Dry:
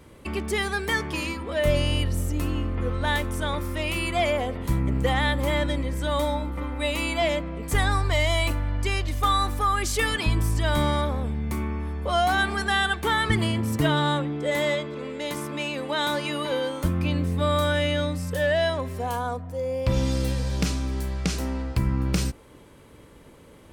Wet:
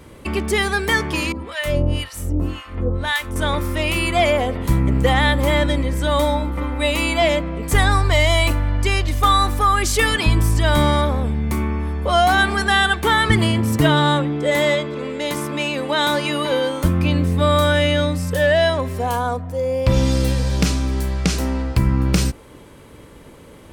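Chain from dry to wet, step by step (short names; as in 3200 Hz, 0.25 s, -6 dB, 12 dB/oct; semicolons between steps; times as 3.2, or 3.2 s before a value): 1.32–3.36 harmonic tremolo 1.9 Hz, depth 100%, crossover 880 Hz; gain +7 dB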